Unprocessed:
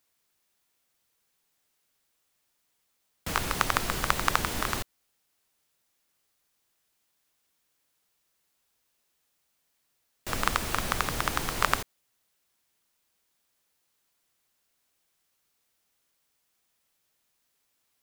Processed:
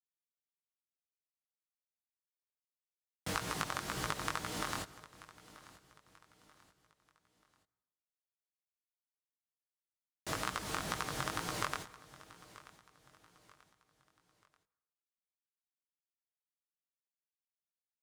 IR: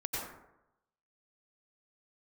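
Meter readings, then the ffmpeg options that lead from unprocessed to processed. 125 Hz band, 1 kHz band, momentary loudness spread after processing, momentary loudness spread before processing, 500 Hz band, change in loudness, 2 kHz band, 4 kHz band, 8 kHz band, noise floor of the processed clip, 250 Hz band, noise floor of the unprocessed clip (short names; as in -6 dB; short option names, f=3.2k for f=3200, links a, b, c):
-8.0 dB, -9.5 dB, 19 LU, 9 LU, -7.5 dB, -9.5 dB, -10.0 dB, -8.0 dB, -8.0 dB, under -85 dBFS, -6.5 dB, -76 dBFS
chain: -filter_complex "[0:a]lowpass=11k,equalizer=f=2.5k:w=2.7:g=-3,acrusher=bits=7:mix=0:aa=0.000001,aecho=1:1:6.5:0.35,acompressor=threshold=-29dB:ratio=6,asplit=2[a][b];[1:a]atrim=start_sample=2205,adelay=68[c];[b][c]afir=irnorm=-1:irlink=0,volume=-25dB[d];[a][d]amix=inputs=2:normalize=0,flanger=delay=16:depth=6.3:speed=2,highpass=67,aecho=1:1:935|1870|2805:0.112|0.0438|0.0171"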